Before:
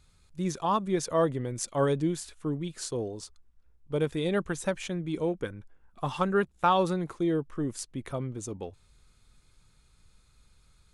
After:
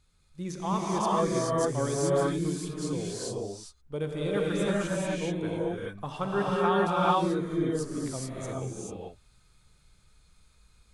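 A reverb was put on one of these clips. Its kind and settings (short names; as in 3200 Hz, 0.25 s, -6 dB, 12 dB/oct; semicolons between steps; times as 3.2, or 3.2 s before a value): non-linear reverb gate 0.46 s rising, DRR -6 dB; gain -5.5 dB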